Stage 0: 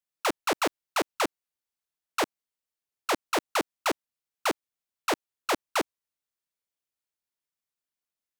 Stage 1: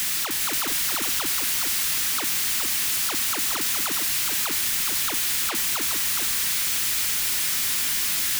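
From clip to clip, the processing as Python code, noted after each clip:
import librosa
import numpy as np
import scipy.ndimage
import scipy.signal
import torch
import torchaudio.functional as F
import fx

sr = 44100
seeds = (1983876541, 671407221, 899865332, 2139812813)

y = np.sign(x) * np.sqrt(np.mean(np.square(x)))
y = fx.curve_eq(y, sr, hz=(250.0, 530.0, 1900.0), db=(0, -10, 5))
y = y + 10.0 ** (-5.0 / 20.0) * np.pad(y, (int(417 * sr / 1000.0), 0))[:len(y)]
y = F.gain(torch.from_numpy(y), 6.0).numpy()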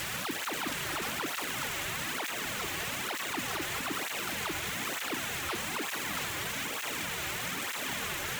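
y = scipy.signal.medfilt(x, 9)
y = fx.flanger_cancel(y, sr, hz=1.1, depth_ms=4.6)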